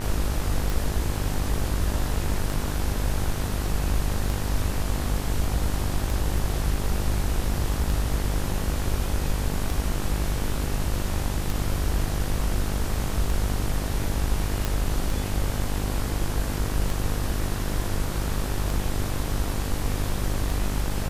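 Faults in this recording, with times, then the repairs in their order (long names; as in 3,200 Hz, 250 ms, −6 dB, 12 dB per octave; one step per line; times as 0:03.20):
mains buzz 50 Hz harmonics 39 −29 dBFS
scratch tick 33 1/3 rpm
0:14.65: click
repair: click removal
hum removal 50 Hz, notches 39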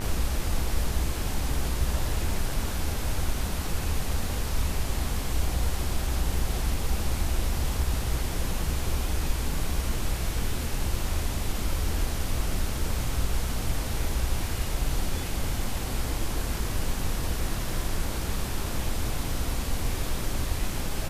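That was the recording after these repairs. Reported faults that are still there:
none of them is left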